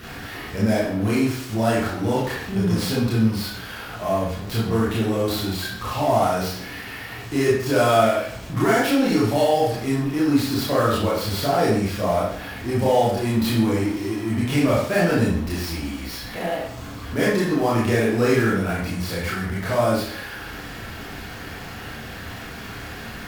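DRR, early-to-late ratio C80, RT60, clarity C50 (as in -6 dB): -7.5 dB, 5.5 dB, 0.60 s, 1.0 dB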